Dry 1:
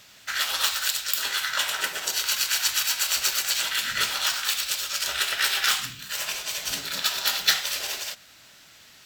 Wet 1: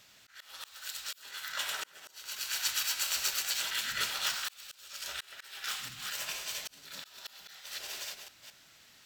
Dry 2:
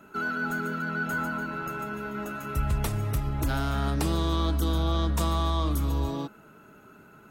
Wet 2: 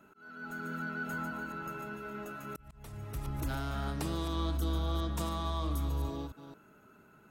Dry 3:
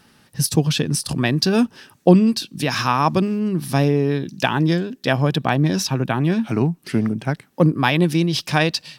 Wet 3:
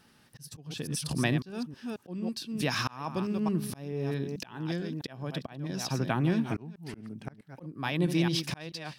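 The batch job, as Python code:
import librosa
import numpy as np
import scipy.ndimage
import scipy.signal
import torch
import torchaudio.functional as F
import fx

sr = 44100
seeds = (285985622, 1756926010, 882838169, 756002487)

y = fx.reverse_delay(x, sr, ms=218, wet_db=-10.0)
y = fx.auto_swell(y, sr, attack_ms=605.0)
y = y * 10.0 ** (-8.0 / 20.0)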